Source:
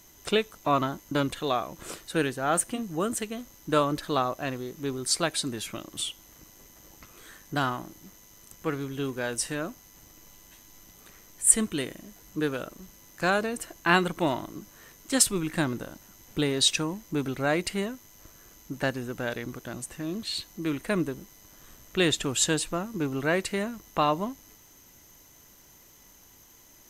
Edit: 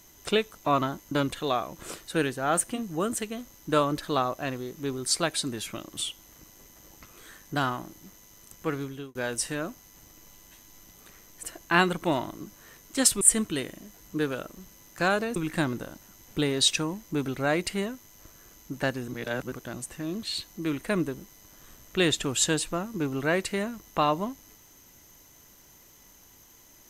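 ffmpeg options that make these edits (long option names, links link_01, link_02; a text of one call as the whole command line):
ffmpeg -i in.wav -filter_complex "[0:a]asplit=7[link_01][link_02][link_03][link_04][link_05][link_06][link_07];[link_01]atrim=end=9.15,asetpts=PTS-STARTPTS,afade=type=out:start_time=8.82:duration=0.33[link_08];[link_02]atrim=start=9.15:end=11.432,asetpts=PTS-STARTPTS,afade=type=in:duration=0.004:curve=hsin[link_09];[link_03]atrim=start=13.578:end=15.362[link_10];[link_04]atrim=start=11.428:end=13.582[link_11];[link_05]atrim=start=15.358:end=19.082[link_12];[link_06]atrim=start=19.078:end=19.522,asetpts=PTS-STARTPTS,areverse[link_13];[link_07]atrim=start=19.518[link_14];[link_08][link_09]concat=n=2:v=0:a=1[link_15];[link_15][link_10]acrossfade=duration=0.004:curve1=hsin:curve2=hsin[link_16];[link_16][link_11]acrossfade=duration=0.004:curve1=hsin:curve2=hsin[link_17];[link_17][link_12]acrossfade=duration=0.004:curve1=hsin:curve2=hsin[link_18];[link_18][link_13]acrossfade=duration=0.004:curve1=hsin:curve2=hsin[link_19];[link_19][link_14]acrossfade=duration=0.004:curve1=hsin:curve2=hsin" out.wav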